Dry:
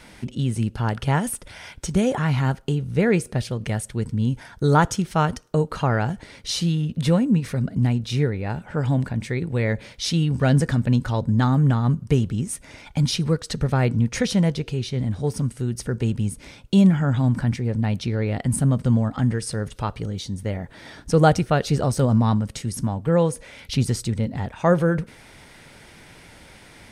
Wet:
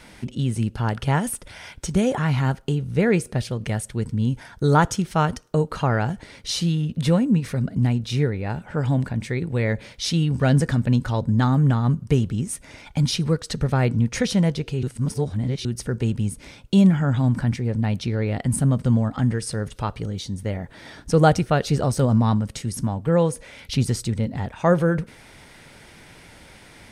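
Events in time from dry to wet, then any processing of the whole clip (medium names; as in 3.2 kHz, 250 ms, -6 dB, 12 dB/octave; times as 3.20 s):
14.83–15.65 s: reverse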